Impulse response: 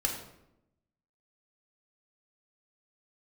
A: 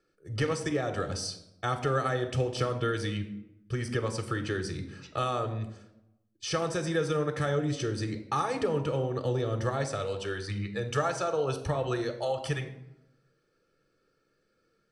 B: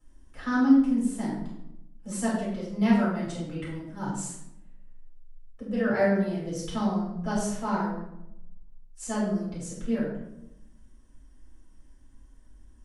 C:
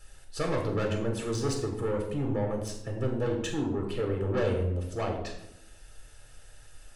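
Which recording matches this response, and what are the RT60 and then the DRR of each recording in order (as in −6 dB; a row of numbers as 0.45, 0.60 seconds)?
C; 0.85, 0.85, 0.85 seconds; 7.0, −9.0, 0.0 decibels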